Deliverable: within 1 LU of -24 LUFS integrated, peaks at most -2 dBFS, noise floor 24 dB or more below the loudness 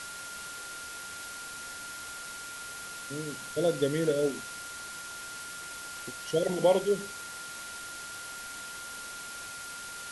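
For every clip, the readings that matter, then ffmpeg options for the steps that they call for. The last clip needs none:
steady tone 1.4 kHz; tone level -42 dBFS; noise floor -42 dBFS; noise floor target -58 dBFS; loudness -34.0 LUFS; peak level -12.5 dBFS; loudness target -24.0 LUFS
-> -af "bandreject=f=1400:w=30"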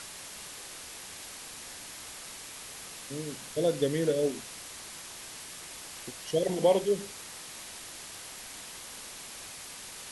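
steady tone not found; noise floor -45 dBFS; noise floor target -59 dBFS
-> -af "afftdn=nr=14:nf=-45"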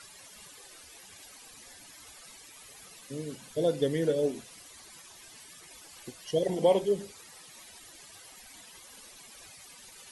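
noise floor -52 dBFS; noise floor target -54 dBFS
-> -af "afftdn=nr=6:nf=-52"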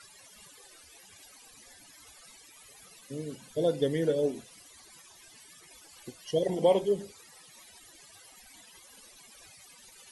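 noise floor -55 dBFS; loudness -29.5 LUFS; peak level -12.5 dBFS; loudness target -24.0 LUFS
-> -af "volume=1.88"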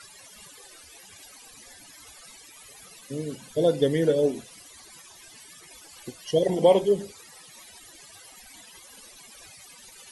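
loudness -24.0 LUFS; peak level -7.0 dBFS; noise floor -50 dBFS

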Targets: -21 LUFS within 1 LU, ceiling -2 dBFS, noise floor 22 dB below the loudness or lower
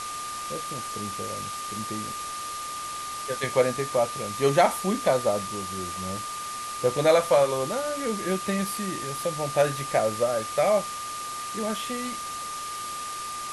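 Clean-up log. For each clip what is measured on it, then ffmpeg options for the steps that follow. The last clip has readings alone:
steady tone 1.2 kHz; tone level -33 dBFS; noise floor -35 dBFS; noise floor target -49 dBFS; loudness -27.0 LUFS; peak level -8.0 dBFS; loudness target -21.0 LUFS
-> -af "bandreject=f=1200:w=30"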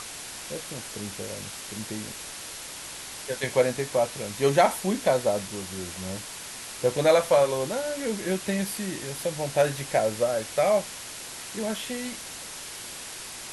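steady tone not found; noise floor -40 dBFS; noise floor target -50 dBFS
-> -af "afftdn=nr=10:nf=-40"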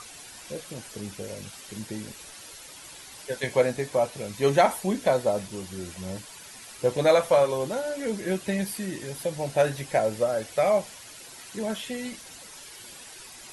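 noise floor -45 dBFS; noise floor target -49 dBFS
-> -af "afftdn=nr=6:nf=-45"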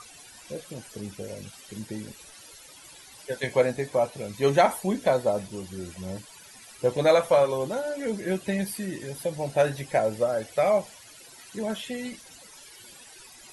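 noise floor -49 dBFS; loudness -26.5 LUFS; peak level -8.0 dBFS; loudness target -21.0 LUFS
-> -af "volume=1.88"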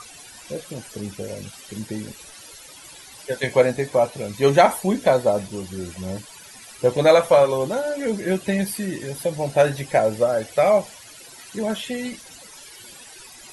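loudness -21.0 LUFS; peak level -2.5 dBFS; noise floor -44 dBFS

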